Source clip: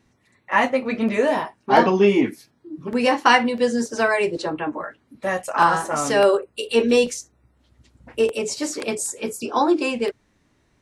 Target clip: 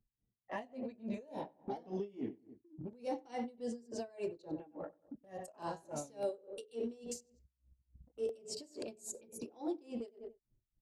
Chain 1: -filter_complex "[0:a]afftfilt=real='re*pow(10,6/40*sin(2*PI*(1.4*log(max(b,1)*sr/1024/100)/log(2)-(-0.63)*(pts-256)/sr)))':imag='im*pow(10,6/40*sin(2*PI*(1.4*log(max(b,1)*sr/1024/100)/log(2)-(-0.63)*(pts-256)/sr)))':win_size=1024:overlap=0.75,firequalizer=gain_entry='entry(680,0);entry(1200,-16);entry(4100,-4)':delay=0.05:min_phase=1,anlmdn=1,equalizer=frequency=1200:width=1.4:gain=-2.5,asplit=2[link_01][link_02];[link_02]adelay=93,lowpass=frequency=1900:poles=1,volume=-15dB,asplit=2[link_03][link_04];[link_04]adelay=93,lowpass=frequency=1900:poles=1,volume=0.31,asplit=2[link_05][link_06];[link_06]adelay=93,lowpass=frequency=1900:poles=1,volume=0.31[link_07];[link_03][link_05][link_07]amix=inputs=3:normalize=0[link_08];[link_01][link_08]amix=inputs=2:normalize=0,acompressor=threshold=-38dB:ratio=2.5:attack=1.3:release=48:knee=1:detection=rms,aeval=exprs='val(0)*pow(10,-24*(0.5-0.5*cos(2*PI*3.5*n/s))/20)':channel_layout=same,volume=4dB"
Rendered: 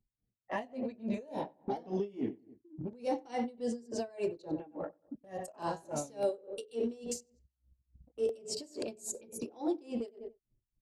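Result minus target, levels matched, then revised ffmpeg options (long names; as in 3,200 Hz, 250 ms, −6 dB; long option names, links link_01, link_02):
downward compressor: peak gain reduction −5.5 dB
-filter_complex "[0:a]afftfilt=real='re*pow(10,6/40*sin(2*PI*(1.4*log(max(b,1)*sr/1024/100)/log(2)-(-0.63)*(pts-256)/sr)))':imag='im*pow(10,6/40*sin(2*PI*(1.4*log(max(b,1)*sr/1024/100)/log(2)-(-0.63)*(pts-256)/sr)))':win_size=1024:overlap=0.75,firequalizer=gain_entry='entry(680,0);entry(1200,-16);entry(4100,-4)':delay=0.05:min_phase=1,anlmdn=1,equalizer=frequency=1200:width=1.4:gain=-2.5,asplit=2[link_01][link_02];[link_02]adelay=93,lowpass=frequency=1900:poles=1,volume=-15dB,asplit=2[link_03][link_04];[link_04]adelay=93,lowpass=frequency=1900:poles=1,volume=0.31,asplit=2[link_05][link_06];[link_06]adelay=93,lowpass=frequency=1900:poles=1,volume=0.31[link_07];[link_03][link_05][link_07]amix=inputs=3:normalize=0[link_08];[link_01][link_08]amix=inputs=2:normalize=0,acompressor=threshold=-47dB:ratio=2.5:attack=1.3:release=48:knee=1:detection=rms,aeval=exprs='val(0)*pow(10,-24*(0.5-0.5*cos(2*PI*3.5*n/s))/20)':channel_layout=same,volume=4dB"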